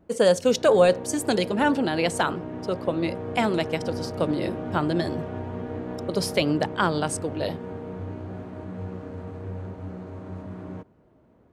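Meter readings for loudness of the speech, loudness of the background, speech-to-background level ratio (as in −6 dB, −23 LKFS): −24.5 LKFS, −35.0 LKFS, 10.5 dB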